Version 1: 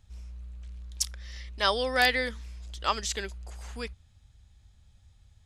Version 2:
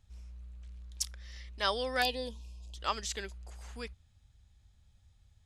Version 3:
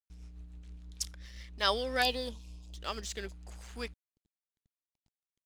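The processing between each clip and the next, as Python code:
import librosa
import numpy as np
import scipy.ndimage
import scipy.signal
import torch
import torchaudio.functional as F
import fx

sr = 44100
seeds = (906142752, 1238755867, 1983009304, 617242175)

y1 = fx.spec_box(x, sr, start_s=2.03, length_s=0.73, low_hz=1100.0, high_hz=2400.0, gain_db=-24)
y1 = y1 * 10.0 ** (-5.5 / 20.0)
y2 = fx.rotary_switch(y1, sr, hz=7.0, then_hz=0.7, switch_at_s=1.11)
y2 = np.sign(y2) * np.maximum(np.abs(y2) - 10.0 ** (-56.0 / 20.0), 0.0)
y2 = y2 * 10.0 ** (4.0 / 20.0)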